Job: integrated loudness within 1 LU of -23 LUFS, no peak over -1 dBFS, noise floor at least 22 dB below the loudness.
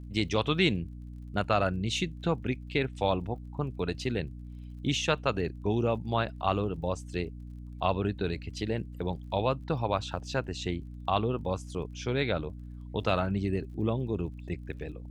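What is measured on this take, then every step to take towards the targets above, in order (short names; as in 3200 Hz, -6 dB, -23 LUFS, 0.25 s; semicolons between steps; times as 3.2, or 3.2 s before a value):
ticks 40/s; hum 60 Hz; harmonics up to 300 Hz; hum level -40 dBFS; loudness -31.5 LUFS; peak -11.0 dBFS; loudness target -23.0 LUFS
-> de-click; notches 60/120/180/240/300 Hz; gain +8.5 dB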